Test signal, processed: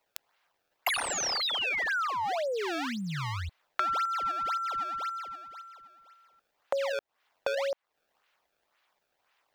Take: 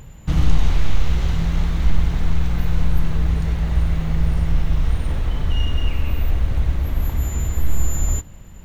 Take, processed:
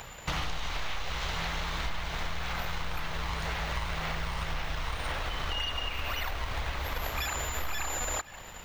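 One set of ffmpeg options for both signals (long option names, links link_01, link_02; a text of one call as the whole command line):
ffmpeg -i in.wav -filter_complex "[0:a]aemphasis=mode=production:type=50fm,asplit=2[link_01][link_02];[link_02]acrusher=samples=25:mix=1:aa=0.000001:lfo=1:lforange=40:lforate=1.9,volume=-3dB[link_03];[link_01][link_03]amix=inputs=2:normalize=0,acrossover=split=600 5500:gain=0.0891 1 0.126[link_04][link_05][link_06];[link_04][link_05][link_06]amix=inputs=3:normalize=0,acompressor=threshold=-35dB:ratio=8,volume=6dB" out.wav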